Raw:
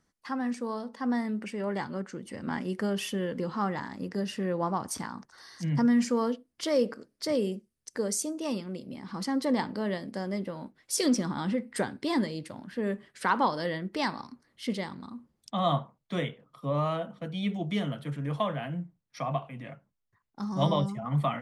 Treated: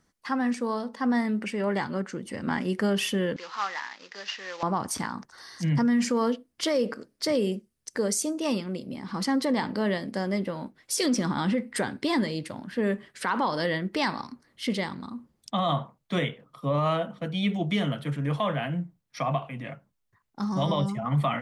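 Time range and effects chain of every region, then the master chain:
3.36–4.63 s: CVSD coder 32 kbps + high-pass 1.1 kHz
whole clip: peak limiter -22 dBFS; dynamic bell 2.4 kHz, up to +3 dB, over -49 dBFS, Q 0.81; trim +4.5 dB

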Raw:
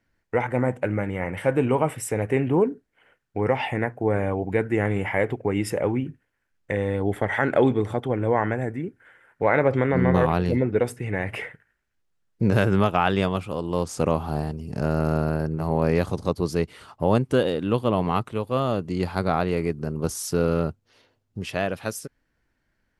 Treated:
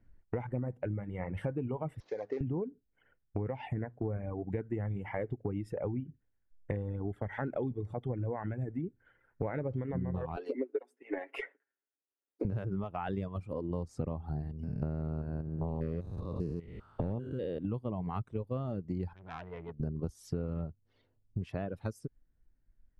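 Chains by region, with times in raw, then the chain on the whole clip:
2.00–2.41 s: CVSD coder 32 kbps + high-pass 490 Hz + dynamic bell 2.6 kHz, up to -7 dB, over -47 dBFS, Q 0.93
10.36–12.45 s: steep high-pass 290 Hz 48 dB/octave + comb 7.3 ms, depth 72% + transient shaper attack +8 dB, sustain -4 dB
14.63–17.65 s: spectrogram pixelated in time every 200 ms + hard clipper -12 dBFS
19.13–19.80 s: four-pole ladder low-pass 2.3 kHz, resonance 60% + transformer saturation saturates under 2.2 kHz
whole clip: reverb removal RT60 1.7 s; tilt EQ -4 dB/octave; compression 8:1, threshold -28 dBFS; trim -4.5 dB

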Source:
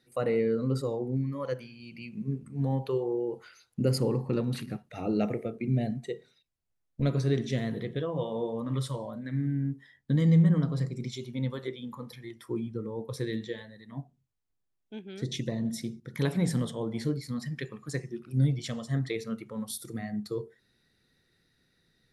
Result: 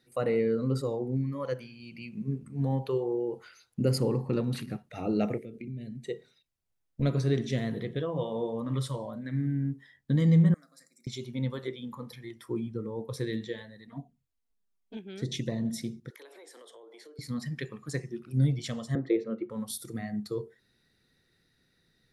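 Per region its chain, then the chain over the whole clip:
5.38–6.06 s: compression 4:1, threshold -37 dBFS + Butterworth band-stop 920 Hz, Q 0.63
10.54–11.07 s: differentiator + static phaser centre 620 Hz, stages 8
13.87–14.97 s: touch-sensitive flanger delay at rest 5.4 ms, full sweep at -36 dBFS + comb 4.3 ms, depth 48%
16.10–17.19 s: steep high-pass 350 Hz 48 dB/octave + compression 10:1, threshold -48 dBFS
18.95–19.50 s: high-pass 210 Hz + tape spacing loss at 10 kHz 30 dB + small resonant body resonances 360/510 Hz, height 16 dB, ringing for 60 ms
whole clip: none

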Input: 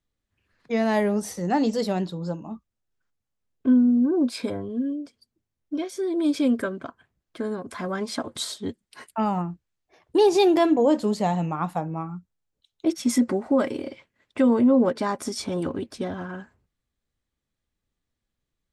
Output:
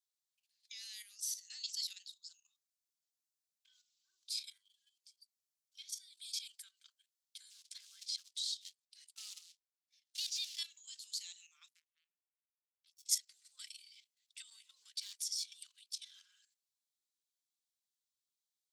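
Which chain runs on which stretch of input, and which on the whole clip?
7.50–10.59 s: short-mantissa float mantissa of 2-bit + distance through air 72 m
11.68–13.09 s: compression 2:1, threshold -41 dBFS + power-law waveshaper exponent 3 + doubling 13 ms -13 dB
14.98–15.60 s: peaking EQ 180 Hz -14.5 dB 1.2 oct + hard clipper -24 dBFS
whole clip: inverse Chebyshev high-pass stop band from 680 Hz, stop band 80 dB; dynamic bell 8.8 kHz, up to -5 dB, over -51 dBFS, Q 1.4; level held to a coarse grid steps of 11 dB; trim +5.5 dB

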